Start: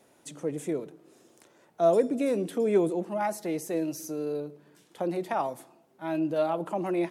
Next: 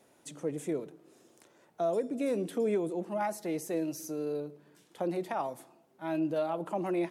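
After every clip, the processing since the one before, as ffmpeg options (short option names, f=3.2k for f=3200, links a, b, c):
-af "alimiter=limit=-19.5dB:level=0:latency=1:release=349,volume=-2.5dB"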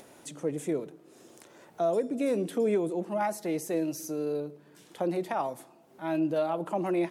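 -af "acompressor=mode=upward:threshold=-48dB:ratio=2.5,volume=3dB"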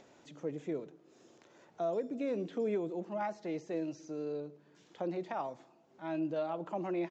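-filter_complex "[0:a]acrossover=split=4500[a][b];[b]acompressor=threshold=-57dB:ratio=4:attack=1:release=60[c];[a][c]amix=inputs=2:normalize=0,aresample=16000,aresample=44100,volume=-7dB"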